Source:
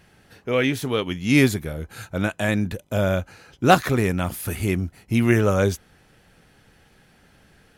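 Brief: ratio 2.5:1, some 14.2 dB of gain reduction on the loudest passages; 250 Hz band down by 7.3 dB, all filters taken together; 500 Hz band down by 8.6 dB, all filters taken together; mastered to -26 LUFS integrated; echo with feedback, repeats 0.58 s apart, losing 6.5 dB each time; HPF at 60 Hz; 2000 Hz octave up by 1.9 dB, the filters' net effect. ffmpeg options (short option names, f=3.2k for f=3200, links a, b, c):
-af "highpass=60,equalizer=f=250:t=o:g=-7,equalizer=f=500:t=o:g=-9,equalizer=f=2k:t=o:g=3,acompressor=threshold=-35dB:ratio=2.5,aecho=1:1:580|1160|1740|2320|2900|3480:0.473|0.222|0.105|0.0491|0.0231|0.0109,volume=8.5dB"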